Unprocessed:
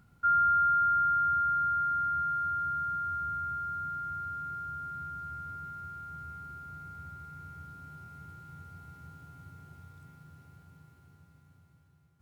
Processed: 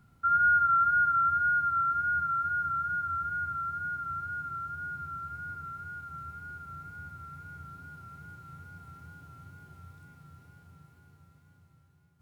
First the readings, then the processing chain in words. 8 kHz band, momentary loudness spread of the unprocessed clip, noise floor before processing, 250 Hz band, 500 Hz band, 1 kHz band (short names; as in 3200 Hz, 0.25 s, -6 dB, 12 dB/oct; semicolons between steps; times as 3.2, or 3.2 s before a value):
n/a, 23 LU, -63 dBFS, 0.0 dB, +0.5 dB, +1.0 dB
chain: wow and flutter 41 cents; flutter echo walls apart 6 m, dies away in 0.23 s